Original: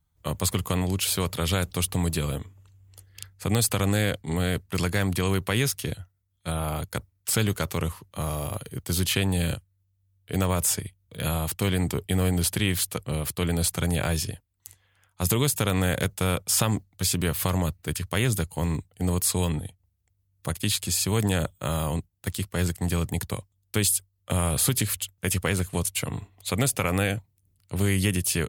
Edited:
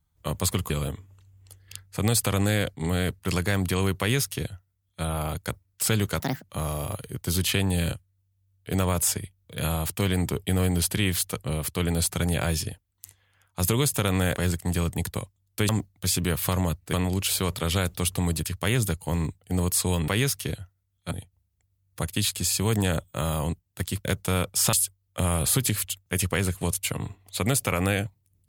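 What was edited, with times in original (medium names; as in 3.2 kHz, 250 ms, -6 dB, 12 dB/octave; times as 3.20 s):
0.70–2.17 s: move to 17.90 s
5.47–6.50 s: copy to 19.58 s
7.67–8.06 s: speed 162%
15.98–16.66 s: swap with 22.52–23.85 s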